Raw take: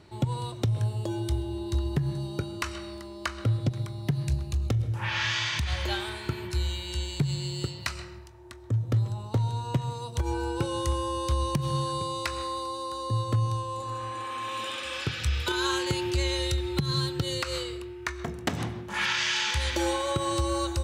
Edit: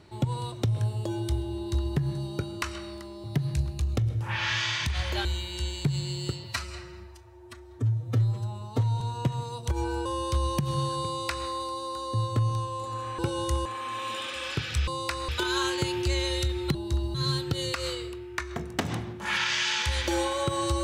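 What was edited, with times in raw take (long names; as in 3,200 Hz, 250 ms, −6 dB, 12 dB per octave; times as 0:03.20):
0:01.56–0:01.96: duplicate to 0:16.83
0:03.24–0:03.97: remove
0:05.98–0:06.60: remove
0:07.79–0:09.50: time-stretch 1.5×
0:10.55–0:11.02: move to 0:14.15
0:12.04–0:12.45: duplicate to 0:15.37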